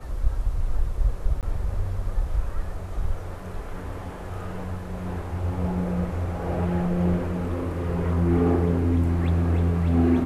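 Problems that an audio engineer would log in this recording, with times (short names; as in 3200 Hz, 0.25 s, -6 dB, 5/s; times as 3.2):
1.41–1.43 gap 18 ms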